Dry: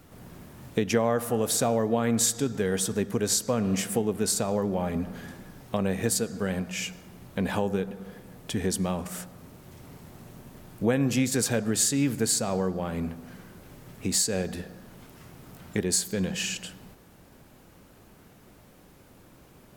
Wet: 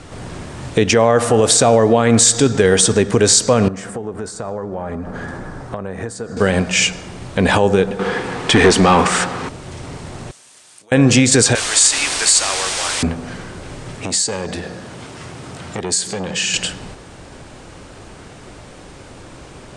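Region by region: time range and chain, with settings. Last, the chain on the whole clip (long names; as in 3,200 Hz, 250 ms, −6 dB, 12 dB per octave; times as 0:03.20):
0:03.68–0:06.37: downward compressor 5 to 1, threshold −39 dBFS + high shelf with overshoot 2,000 Hz −8.5 dB, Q 1.5
0:07.99–0:09.49: parametric band 610 Hz −12 dB 0.27 octaves + mid-hump overdrive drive 22 dB, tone 1,800 Hz, clips at −16 dBFS
0:10.31–0:10.92: downward compressor 5 to 1, threshold −38 dBFS + first difference
0:11.55–0:13.03: high-pass filter 1,400 Hz + bit-depth reduction 6 bits, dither triangular
0:13.98–0:16.54: downward compressor 2.5 to 1, threshold −36 dBFS + high-pass filter 82 Hz + saturating transformer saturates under 810 Hz
whole clip: elliptic low-pass filter 9,000 Hz, stop band 50 dB; parametric band 200 Hz −6 dB 0.81 octaves; boost into a limiter +19.5 dB; level −1 dB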